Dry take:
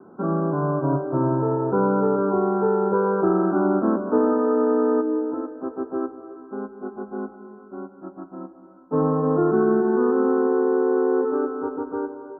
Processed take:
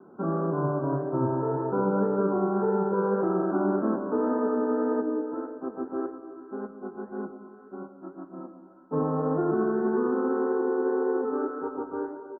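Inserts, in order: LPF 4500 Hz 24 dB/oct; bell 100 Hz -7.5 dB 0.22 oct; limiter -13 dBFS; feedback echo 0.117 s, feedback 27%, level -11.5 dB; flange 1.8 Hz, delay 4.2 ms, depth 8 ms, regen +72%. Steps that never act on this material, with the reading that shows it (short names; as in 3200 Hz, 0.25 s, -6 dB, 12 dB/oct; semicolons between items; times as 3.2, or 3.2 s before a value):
LPF 4500 Hz: input band ends at 1500 Hz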